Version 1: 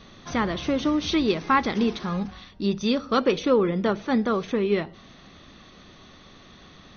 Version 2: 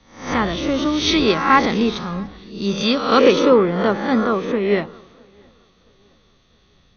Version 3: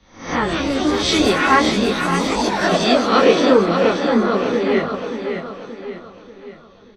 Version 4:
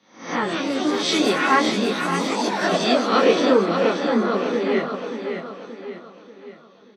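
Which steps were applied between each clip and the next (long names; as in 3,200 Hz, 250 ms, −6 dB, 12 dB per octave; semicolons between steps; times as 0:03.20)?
peak hold with a rise ahead of every peak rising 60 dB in 0.79 s; tape delay 665 ms, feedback 61%, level −19.5 dB, low-pass 2,400 Hz; multiband upward and downward expander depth 70%; level +3.5 dB
delay with pitch and tempo change per echo 275 ms, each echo +5 semitones, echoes 3, each echo −6 dB; repeating echo 582 ms, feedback 46%, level −7 dB; micro pitch shift up and down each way 14 cents; level +3.5 dB
high-pass filter 170 Hz 24 dB per octave; level −3.5 dB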